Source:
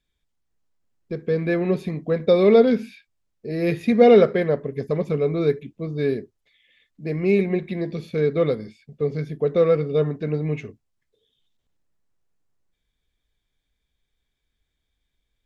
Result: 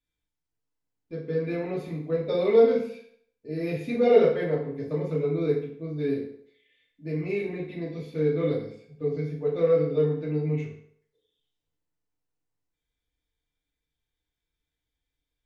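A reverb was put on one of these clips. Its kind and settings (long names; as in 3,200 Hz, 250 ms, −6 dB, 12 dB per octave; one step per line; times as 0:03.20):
feedback delay network reverb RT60 0.63 s, low-frequency decay 0.8×, high-frequency decay 0.85×, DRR −6.5 dB
level −14 dB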